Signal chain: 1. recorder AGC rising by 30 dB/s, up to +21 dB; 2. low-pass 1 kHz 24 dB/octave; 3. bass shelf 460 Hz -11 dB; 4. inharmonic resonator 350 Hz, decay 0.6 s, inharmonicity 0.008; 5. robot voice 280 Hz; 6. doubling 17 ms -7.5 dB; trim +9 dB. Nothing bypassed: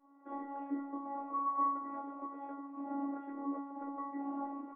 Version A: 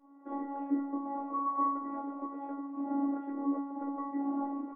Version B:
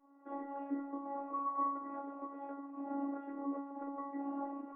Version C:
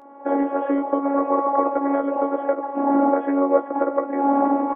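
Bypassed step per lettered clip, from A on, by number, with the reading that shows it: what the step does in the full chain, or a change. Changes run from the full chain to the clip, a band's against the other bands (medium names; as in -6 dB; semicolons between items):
3, crest factor change -1.5 dB; 6, 500 Hz band +4.0 dB; 4, 500 Hz band +11.0 dB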